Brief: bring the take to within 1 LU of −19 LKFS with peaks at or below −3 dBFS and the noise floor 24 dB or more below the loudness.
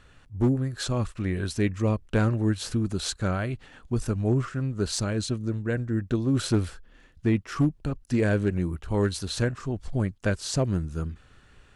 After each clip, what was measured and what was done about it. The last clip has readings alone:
share of clipped samples 0.3%; peaks flattened at −15.0 dBFS; integrated loudness −27.5 LKFS; sample peak −15.0 dBFS; target loudness −19.0 LKFS
→ clipped peaks rebuilt −15 dBFS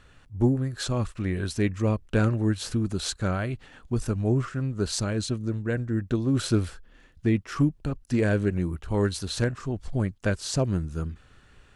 share of clipped samples 0.0%; integrated loudness −27.5 LKFS; sample peak −9.5 dBFS; target loudness −19.0 LKFS
→ level +8.5 dB
brickwall limiter −3 dBFS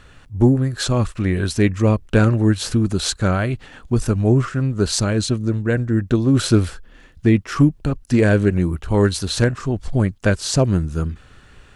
integrated loudness −19.0 LKFS; sample peak −3.0 dBFS; background noise floor −48 dBFS

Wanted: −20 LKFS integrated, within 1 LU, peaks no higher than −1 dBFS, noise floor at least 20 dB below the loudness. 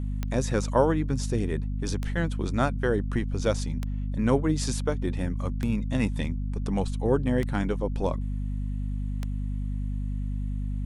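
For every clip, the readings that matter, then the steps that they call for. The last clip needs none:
number of clicks 6; mains hum 50 Hz; hum harmonics up to 250 Hz; level of the hum −27 dBFS; integrated loudness −28.5 LKFS; sample peak −9.0 dBFS; target loudness −20.0 LKFS
→ click removal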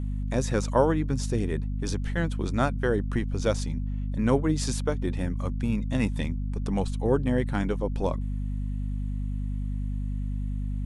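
number of clicks 0; mains hum 50 Hz; hum harmonics up to 250 Hz; level of the hum −27 dBFS
→ mains-hum notches 50/100/150/200/250 Hz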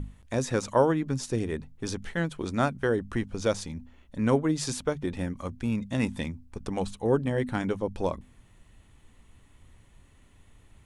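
mains hum none found; integrated loudness −29.5 LKFS; sample peak −9.5 dBFS; target loudness −20.0 LKFS
→ level +9.5 dB
brickwall limiter −1 dBFS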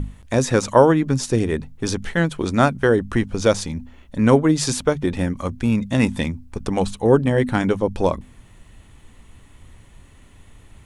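integrated loudness −20.0 LKFS; sample peak −1.0 dBFS; background noise floor −48 dBFS

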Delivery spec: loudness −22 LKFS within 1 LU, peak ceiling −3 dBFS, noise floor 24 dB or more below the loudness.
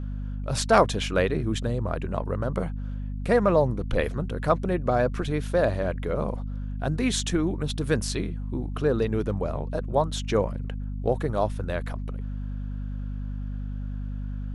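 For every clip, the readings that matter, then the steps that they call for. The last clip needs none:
mains hum 50 Hz; hum harmonics up to 250 Hz; level of the hum −29 dBFS; integrated loudness −27.5 LKFS; sample peak −5.5 dBFS; target loudness −22.0 LKFS
→ mains-hum notches 50/100/150/200/250 Hz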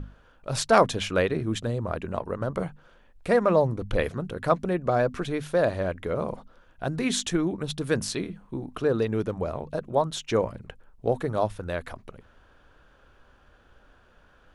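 mains hum none found; integrated loudness −27.0 LKFS; sample peak −4.5 dBFS; target loudness −22.0 LKFS
→ level +5 dB
brickwall limiter −3 dBFS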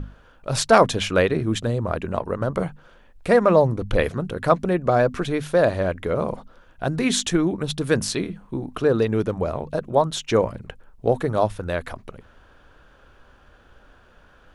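integrated loudness −22.5 LKFS; sample peak −3.0 dBFS; background noise floor −54 dBFS

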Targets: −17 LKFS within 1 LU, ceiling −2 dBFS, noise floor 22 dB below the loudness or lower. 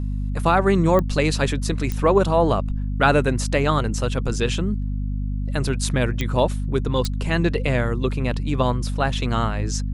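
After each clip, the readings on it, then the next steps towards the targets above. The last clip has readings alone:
number of clicks 4; mains hum 50 Hz; hum harmonics up to 250 Hz; level of the hum −22 dBFS; integrated loudness −22.0 LKFS; sample peak −2.5 dBFS; target loudness −17.0 LKFS
→ click removal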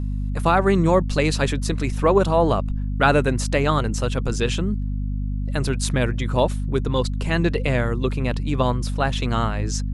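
number of clicks 0; mains hum 50 Hz; hum harmonics up to 250 Hz; level of the hum −22 dBFS
→ mains-hum notches 50/100/150/200/250 Hz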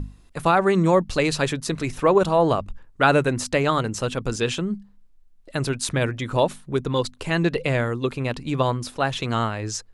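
mains hum none found; integrated loudness −23.0 LKFS; sample peak −3.0 dBFS; target loudness −17.0 LKFS
→ level +6 dB
brickwall limiter −2 dBFS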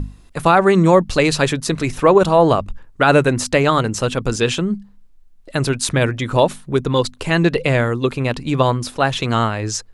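integrated loudness −17.0 LKFS; sample peak −2.0 dBFS; background noise floor −46 dBFS

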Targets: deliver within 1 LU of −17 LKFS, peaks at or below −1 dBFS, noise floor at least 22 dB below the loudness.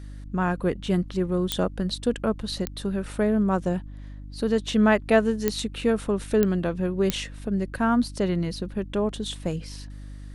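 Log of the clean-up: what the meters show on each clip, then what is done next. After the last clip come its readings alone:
number of clicks 5; mains hum 50 Hz; hum harmonics up to 300 Hz; level of the hum −37 dBFS; integrated loudness −25.5 LKFS; sample peak −4.5 dBFS; target loudness −17.0 LKFS
→ click removal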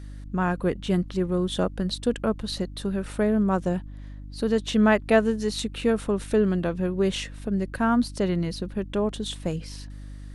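number of clicks 0; mains hum 50 Hz; hum harmonics up to 300 Hz; level of the hum −37 dBFS
→ hum removal 50 Hz, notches 6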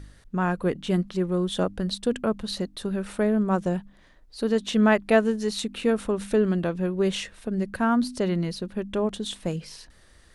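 mains hum none found; integrated loudness −26.0 LKFS; sample peak −5.5 dBFS; target loudness −17.0 LKFS
→ level +9 dB
brickwall limiter −1 dBFS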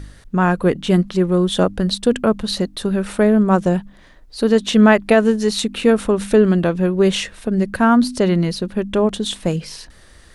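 integrated loudness −17.0 LKFS; sample peak −1.0 dBFS; background noise floor −46 dBFS

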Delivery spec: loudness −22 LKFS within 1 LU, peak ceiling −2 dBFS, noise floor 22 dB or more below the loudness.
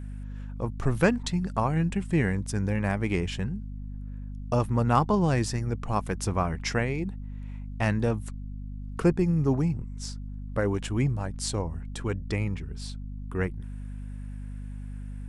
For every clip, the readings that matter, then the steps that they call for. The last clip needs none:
mains hum 50 Hz; hum harmonics up to 250 Hz; level of the hum −35 dBFS; integrated loudness −28.5 LKFS; sample peak −7.5 dBFS; target loudness −22.0 LKFS
→ hum removal 50 Hz, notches 5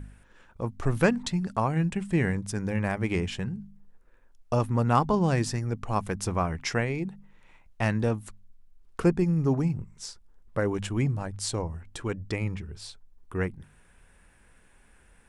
mains hum none found; integrated loudness −28.5 LKFS; sample peak −7.5 dBFS; target loudness −22.0 LKFS
→ level +6.5 dB
brickwall limiter −2 dBFS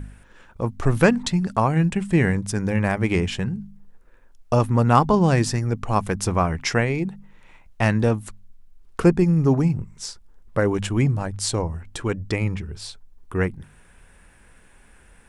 integrated loudness −22.0 LKFS; sample peak −2.0 dBFS; background noise floor −52 dBFS

